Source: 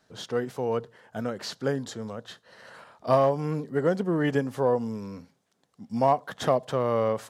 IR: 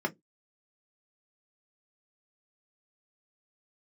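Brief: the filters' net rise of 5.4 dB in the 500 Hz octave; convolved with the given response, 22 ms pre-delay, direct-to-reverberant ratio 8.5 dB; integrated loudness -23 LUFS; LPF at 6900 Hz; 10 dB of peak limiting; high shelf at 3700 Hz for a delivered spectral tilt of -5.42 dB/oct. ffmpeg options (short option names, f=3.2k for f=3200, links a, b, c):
-filter_complex "[0:a]lowpass=6.9k,equalizer=f=500:t=o:g=6.5,highshelf=f=3.7k:g=-8.5,alimiter=limit=-15.5dB:level=0:latency=1,asplit=2[a][b];[1:a]atrim=start_sample=2205,adelay=22[c];[b][c]afir=irnorm=-1:irlink=0,volume=-16dB[d];[a][d]amix=inputs=2:normalize=0,volume=3dB"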